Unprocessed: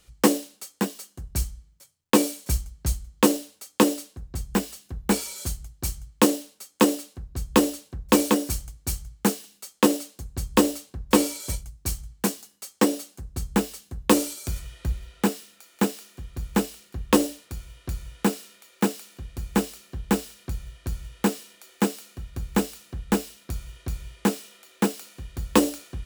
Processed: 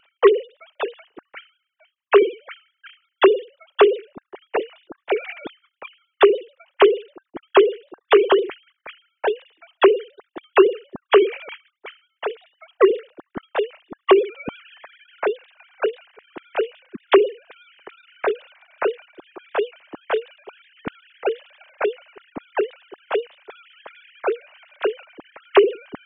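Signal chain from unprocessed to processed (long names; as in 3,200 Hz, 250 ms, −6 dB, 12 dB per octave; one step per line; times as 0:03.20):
three sine waves on the formant tracks
pitch vibrato 7.9 Hz 54 cents
level +4.5 dB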